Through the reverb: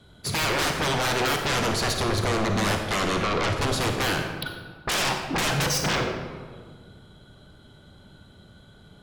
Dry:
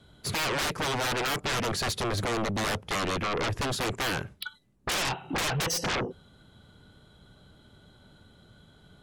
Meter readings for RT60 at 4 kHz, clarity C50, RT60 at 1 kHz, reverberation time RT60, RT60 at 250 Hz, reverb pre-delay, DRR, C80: 0.95 s, 4.5 dB, 1.5 s, 1.6 s, 2.1 s, 33 ms, 3.5 dB, 6.5 dB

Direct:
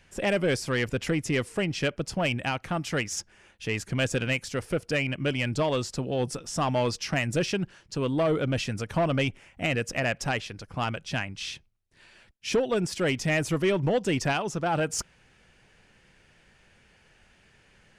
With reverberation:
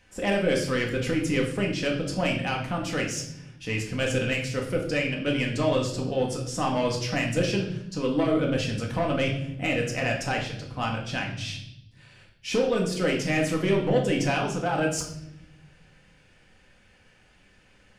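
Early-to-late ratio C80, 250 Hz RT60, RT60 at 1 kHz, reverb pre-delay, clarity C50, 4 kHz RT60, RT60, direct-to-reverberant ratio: 10.5 dB, 1.5 s, 0.65 s, 4 ms, 7.5 dB, 0.70 s, 0.80 s, -0.5 dB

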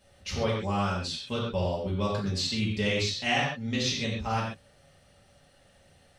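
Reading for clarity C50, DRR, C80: 1.5 dB, -7.0 dB, 4.5 dB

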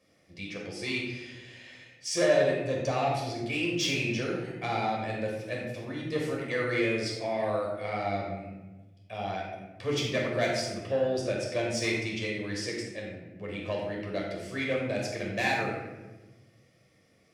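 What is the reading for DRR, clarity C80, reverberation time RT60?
-3.0 dB, 4.0 dB, 1.2 s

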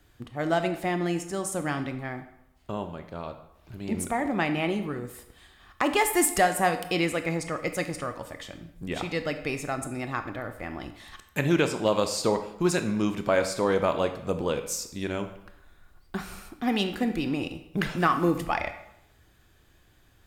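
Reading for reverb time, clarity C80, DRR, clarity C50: 0.85 s, 12.5 dB, 8.0 dB, 10.5 dB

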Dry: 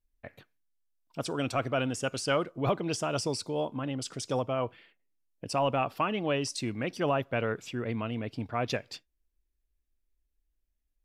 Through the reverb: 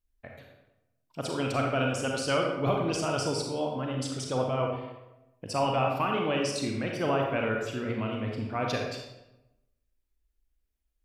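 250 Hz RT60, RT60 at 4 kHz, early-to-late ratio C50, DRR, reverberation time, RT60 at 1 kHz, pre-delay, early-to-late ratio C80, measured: 1.0 s, 0.65 s, 2.0 dB, 0.0 dB, 0.95 s, 0.95 s, 32 ms, 4.5 dB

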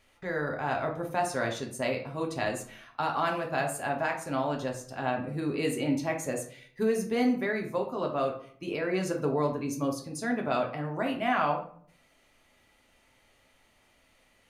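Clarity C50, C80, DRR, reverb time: 8.5 dB, 13.0 dB, 1.0 dB, 0.55 s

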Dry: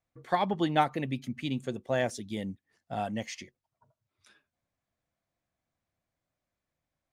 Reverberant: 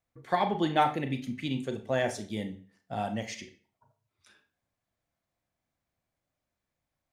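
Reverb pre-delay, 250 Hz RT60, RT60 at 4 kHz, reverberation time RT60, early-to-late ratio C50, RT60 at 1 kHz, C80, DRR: 32 ms, 0.40 s, 0.40 s, 0.45 s, 11.5 dB, 0.45 s, 16.5 dB, 6.0 dB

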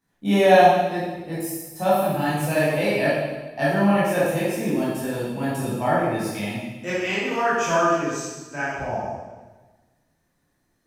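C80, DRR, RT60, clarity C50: 1.5 dB, -9.5 dB, 1.2 s, -1.5 dB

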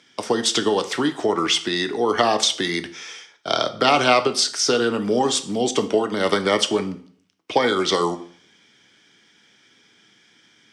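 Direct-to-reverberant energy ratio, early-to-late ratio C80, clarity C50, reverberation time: 9.0 dB, 19.0 dB, 14.5 dB, 0.50 s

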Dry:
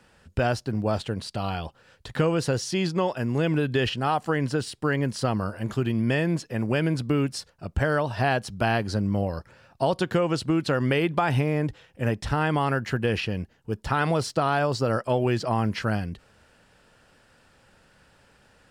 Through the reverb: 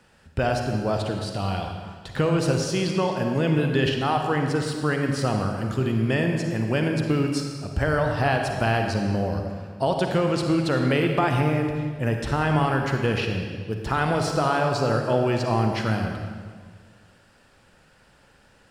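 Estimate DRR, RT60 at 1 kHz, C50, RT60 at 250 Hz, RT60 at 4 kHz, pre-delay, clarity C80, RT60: 3.0 dB, 1.7 s, 3.5 dB, 1.9 s, 1.4 s, 40 ms, 5.0 dB, 1.7 s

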